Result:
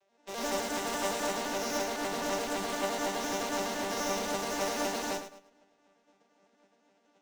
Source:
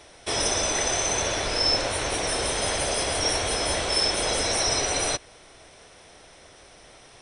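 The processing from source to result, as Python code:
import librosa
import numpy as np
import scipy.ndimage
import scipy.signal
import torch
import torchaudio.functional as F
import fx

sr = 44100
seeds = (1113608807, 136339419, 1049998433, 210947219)

p1 = fx.vocoder_arp(x, sr, chord='minor triad', root=55, every_ms=85)
p2 = fx.tube_stage(p1, sr, drive_db=34.0, bias=0.35)
p3 = fx.formant_shift(p2, sr, semitones=2)
p4 = fx.room_shoebox(p3, sr, seeds[0], volume_m3=3200.0, walls='mixed', distance_m=0.43)
p5 = (np.mod(10.0 ** (35.5 / 20.0) * p4 + 1.0, 2.0) - 1.0) / 10.0 ** (35.5 / 20.0)
p6 = p4 + (p5 * librosa.db_to_amplitude(-11.5))
p7 = fx.echo_feedback(p6, sr, ms=106, feedback_pct=44, wet_db=-3.5)
p8 = fx.upward_expand(p7, sr, threshold_db=-49.0, expansion=2.5)
y = p8 * librosa.db_to_amplitude(3.5)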